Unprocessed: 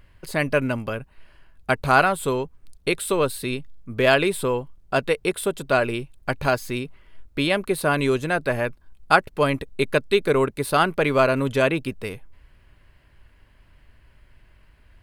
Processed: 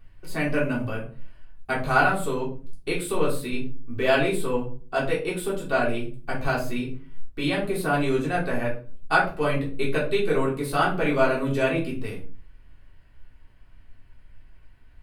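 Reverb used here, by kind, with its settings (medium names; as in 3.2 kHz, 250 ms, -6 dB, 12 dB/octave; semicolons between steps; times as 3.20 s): simulated room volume 240 m³, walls furnished, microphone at 3.5 m; trim -10.5 dB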